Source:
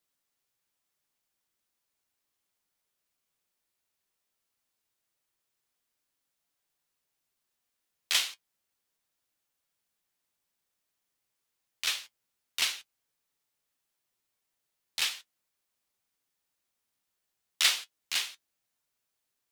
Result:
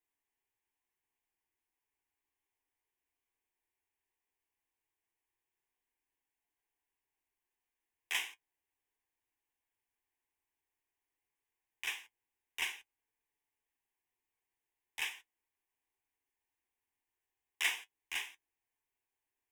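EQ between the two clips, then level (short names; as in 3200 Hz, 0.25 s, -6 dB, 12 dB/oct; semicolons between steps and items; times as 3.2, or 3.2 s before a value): bell 310 Hz -2.5 dB 1.6 oct; high shelf 3600 Hz -9.5 dB; fixed phaser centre 880 Hz, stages 8; 0.0 dB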